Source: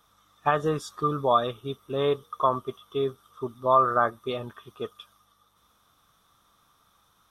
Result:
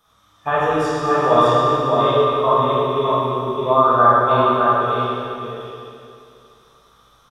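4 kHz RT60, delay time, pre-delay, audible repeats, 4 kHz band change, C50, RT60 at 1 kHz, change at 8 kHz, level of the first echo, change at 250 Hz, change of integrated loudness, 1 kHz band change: 2.5 s, 613 ms, 16 ms, 1, +10.0 dB, -6.5 dB, 2.6 s, no reading, -3.5 dB, +10.5 dB, +10.0 dB, +11.0 dB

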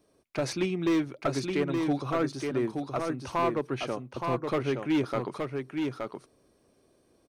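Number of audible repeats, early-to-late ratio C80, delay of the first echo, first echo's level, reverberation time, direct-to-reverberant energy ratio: 1, no reverb, 871 ms, -4.5 dB, no reverb, no reverb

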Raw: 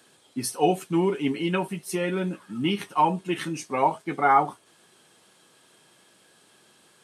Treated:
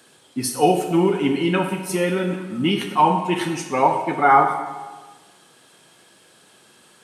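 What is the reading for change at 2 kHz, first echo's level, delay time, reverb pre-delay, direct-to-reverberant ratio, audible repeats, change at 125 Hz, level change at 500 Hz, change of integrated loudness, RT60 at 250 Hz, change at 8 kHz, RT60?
+6.0 dB, no echo, no echo, 23 ms, 4.5 dB, no echo, +5.5 dB, +6.0 dB, +5.5 dB, 1.3 s, +5.5 dB, 1.3 s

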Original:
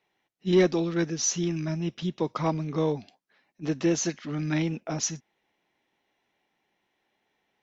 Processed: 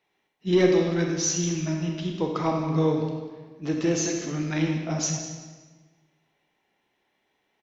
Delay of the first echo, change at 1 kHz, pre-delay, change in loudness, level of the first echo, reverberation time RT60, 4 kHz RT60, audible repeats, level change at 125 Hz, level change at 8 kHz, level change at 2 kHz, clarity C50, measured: 194 ms, +2.5 dB, 25 ms, +2.5 dB, -15.5 dB, 1.4 s, 1.2 s, 1, +2.5 dB, no reading, +2.0 dB, 2.5 dB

